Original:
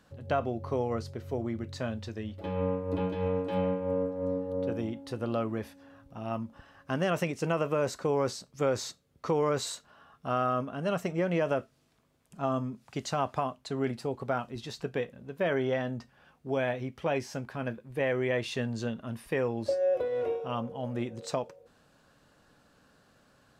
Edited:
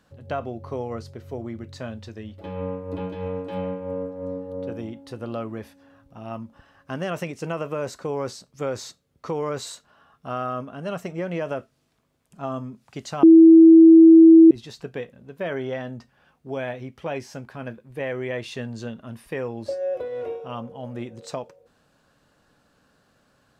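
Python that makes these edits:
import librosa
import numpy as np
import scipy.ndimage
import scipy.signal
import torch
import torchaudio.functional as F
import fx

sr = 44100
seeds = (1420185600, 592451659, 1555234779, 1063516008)

y = fx.edit(x, sr, fx.bleep(start_s=13.23, length_s=1.28, hz=326.0, db=-6.0), tone=tone)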